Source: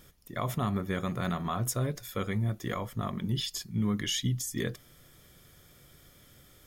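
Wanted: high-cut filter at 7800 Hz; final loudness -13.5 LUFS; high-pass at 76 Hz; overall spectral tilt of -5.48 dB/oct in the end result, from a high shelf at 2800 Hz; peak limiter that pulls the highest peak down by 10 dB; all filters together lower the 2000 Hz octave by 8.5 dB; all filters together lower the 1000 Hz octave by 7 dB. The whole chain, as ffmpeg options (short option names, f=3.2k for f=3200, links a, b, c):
-af "highpass=76,lowpass=7.8k,equalizer=f=1k:t=o:g=-6.5,equalizer=f=2k:t=o:g=-6,highshelf=f=2.8k:g=-6.5,volume=26dB,alimiter=limit=-4dB:level=0:latency=1"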